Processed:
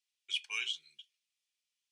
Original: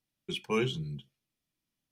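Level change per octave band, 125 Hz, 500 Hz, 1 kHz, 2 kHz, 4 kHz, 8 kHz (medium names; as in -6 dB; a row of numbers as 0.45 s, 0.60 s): under -40 dB, -33.5 dB, -15.5 dB, +0.5 dB, +3.0 dB, +2.0 dB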